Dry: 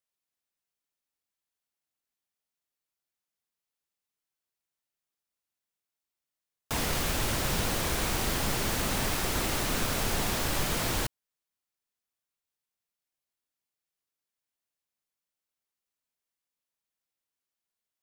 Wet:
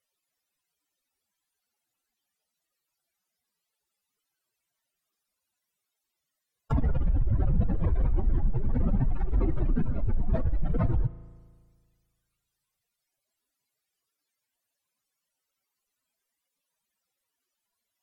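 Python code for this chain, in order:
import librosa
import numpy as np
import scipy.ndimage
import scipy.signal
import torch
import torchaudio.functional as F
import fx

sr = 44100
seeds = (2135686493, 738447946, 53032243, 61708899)

y = fx.spec_expand(x, sr, power=3.3)
y = fx.env_lowpass_down(y, sr, base_hz=1900.0, full_db=-27.5)
y = fx.rev_spring(y, sr, rt60_s=1.7, pass_ms=(36,), chirp_ms=50, drr_db=15.5)
y = F.gain(torch.from_numpy(y), 7.5).numpy()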